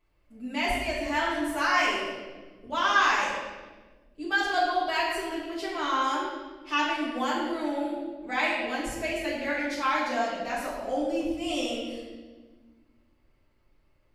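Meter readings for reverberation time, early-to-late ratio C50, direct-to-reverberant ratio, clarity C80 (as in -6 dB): 1.4 s, 1.0 dB, -8.0 dB, 3.0 dB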